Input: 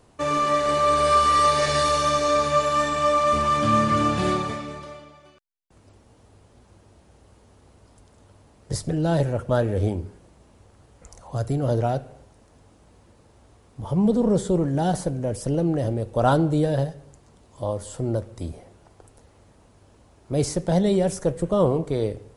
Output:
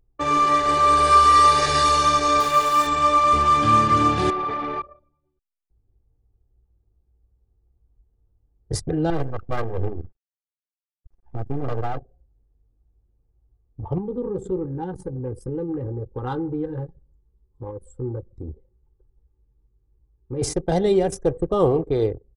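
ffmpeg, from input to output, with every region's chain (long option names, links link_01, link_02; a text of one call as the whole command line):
ffmpeg -i in.wav -filter_complex "[0:a]asettb=1/sr,asplit=3[link_01][link_02][link_03];[link_01]atrim=end=2.404[link_04];[link_02]atrim=start=2.4:end=2.87,asetpts=PTS-STARTPTS,afade=type=in:duration=0.004:curve=qsin,afade=type=out:start_time=0.466:duration=0.004:curve=qsin,highpass=frequency=220:poles=1,aeval=exprs='val(0)*gte(abs(val(0)),0.0316)':channel_layout=same[link_05];[link_03]atrim=start=2.866[link_06];[link_04][link_05]acrossfade=duration=0.004:curve1=hsin:curve2=qsin[link_07];[link_07][link_06]acrossfade=duration=0.004:curve1=qsin:curve2=hsin,asettb=1/sr,asplit=3[link_08][link_09][link_10];[link_08]atrim=end=4.304[link_11];[link_09]atrim=start=4.3:end=4.82,asetpts=PTS-STARTPTS,afade=type=in:duration=0.004:curve=qsin,afade=type=out:start_time=0.516:duration=0.004:curve=qsin,acompressor=threshold=-32dB:ratio=10:attack=3.2:release=140:knee=1:detection=peak,asplit=2[link_12][link_13];[link_13]highpass=frequency=720:poles=1,volume=22dB,asoftclip=type=tanh:threshold=-17.5dB[link_14];[link_12][link_14]amix=inputs=2:normalize=0,lowpass=frequency=1300:poles=1,volume=-6dB[link_15];[link_10]atrim=start=4.816[link_16];[link_11][link_15]acrossfade=duration=0.004:curve1=hsin:curve2=qsin[link_17];[link_17][link_16]acrossfade=duration=0.004:curve1=qsin:curve2=hsin,asettb=1/sr,asplit=3[link_18][link_19][link_20];[link_18]atrim=end=9.104[link_21];[link_19]atrim=start=9.1:end=11.99,asetpts=PTS-STARTPTS,afade=type=in:duration=0.004:curve=qsin,afade=type=out:start_time=2.886:duration=0.004:curve=qsin,acrusher=bits=4:dc=4:mix=0:aa=0.000001,aeval=exprs='max(val(0),0)':channel_layout=same[link_22];[link_20]atrim=start=11.986[link_23];[link_21][link_22]acrossfade=duration=0.004:curve1=hsin:curve2=qsin[link_24];[link_24][link_23]acrossfade=duration=0.004:curve1=qsin:curve2=hsin,asettb=1/sr,asplit=3[link_25][link_26][link_27];[link_25]atrim=end=13.984[link_28];[link_26]atrim=start=13.98:end=20.42,asetpts=PTS-STARTPTS,afade=type=in:duration=0.004:curve=qsin,afade=type=out:start_time=6.436:duration=0.004:curve=qsin,acompressor=threshold=-31dB:ratio=2:attack=3.2:release=140:knee=1:detection=peak,asuperstop=centerf=660:order=8:qfactor=2.9,asplit=2[link_29][link_30];[link_30]adelay=16,volume=-7.5dB[link_31];[link_29][link_31]amix=inputs=2:normalize=0,atrim=end_sample=284004[link_32];[link_27]atrim=start=20.416[link_33];[link_28][link_32]acrossfade=duration=0.004:curve1=hsin:curve2=qsin[link_34];[link_34][link_33]acrossfade=duration=0.004:curve1=qsin:curve2=hsin,anlmdn=25.1,aecho=1:1:2.5:0.51,volume=1.5dB" out.wav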